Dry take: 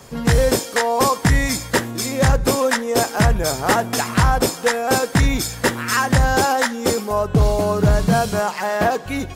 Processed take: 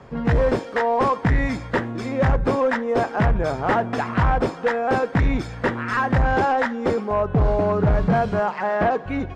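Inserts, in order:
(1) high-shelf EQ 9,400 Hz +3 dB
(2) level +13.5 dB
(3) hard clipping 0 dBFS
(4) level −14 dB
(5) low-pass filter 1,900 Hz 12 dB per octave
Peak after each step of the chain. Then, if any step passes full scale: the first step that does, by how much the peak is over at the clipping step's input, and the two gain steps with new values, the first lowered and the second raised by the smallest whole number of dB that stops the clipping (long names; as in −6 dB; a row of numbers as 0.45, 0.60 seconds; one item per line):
−6.0, +7.5, 0.0, −14.0, −13.5 dBFS
step 2, 7.5 dB
step 2 +5.5 dB, step 4 −6 dB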